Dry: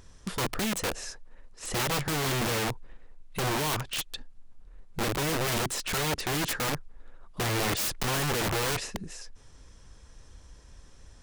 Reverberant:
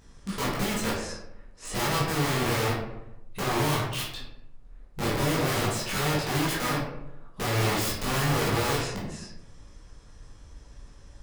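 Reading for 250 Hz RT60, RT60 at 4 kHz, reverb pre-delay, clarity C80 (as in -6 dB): 1.1 s, 0.45 s, 13 ms, 6.0 dB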